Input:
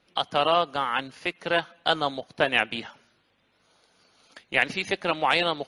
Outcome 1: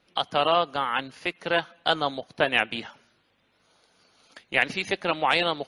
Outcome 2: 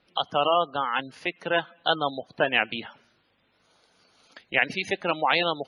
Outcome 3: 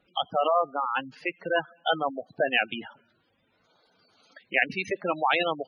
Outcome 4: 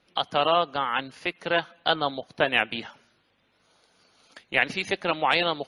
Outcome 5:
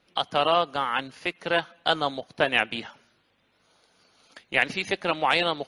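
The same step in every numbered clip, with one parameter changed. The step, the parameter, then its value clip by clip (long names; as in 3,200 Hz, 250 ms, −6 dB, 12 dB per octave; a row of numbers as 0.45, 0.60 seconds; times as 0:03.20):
gate on every frequency bin, under each frame's peak: −45, −20, −10, −35, −60 decibels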